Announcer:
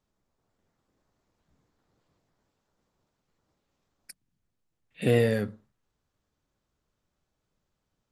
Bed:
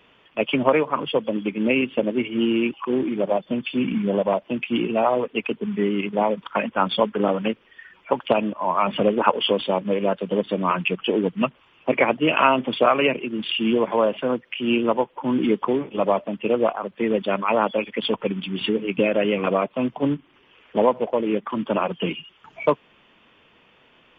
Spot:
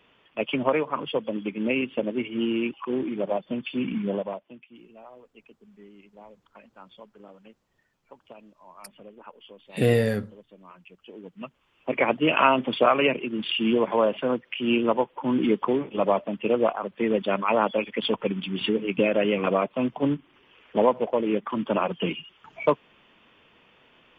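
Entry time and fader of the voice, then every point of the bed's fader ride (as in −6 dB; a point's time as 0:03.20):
4.75 s, +2.0 dB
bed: 0:04.12 −5 dB
0:04.74 −27.5 dB
0:10.91 −27.5 dB
0:12.12 −2 dB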